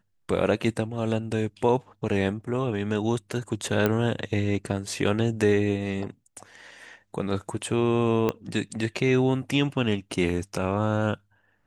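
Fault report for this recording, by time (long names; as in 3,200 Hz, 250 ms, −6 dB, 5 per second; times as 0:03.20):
0:03.86: click −10 dBFS
0:08.29: click −12 dBFS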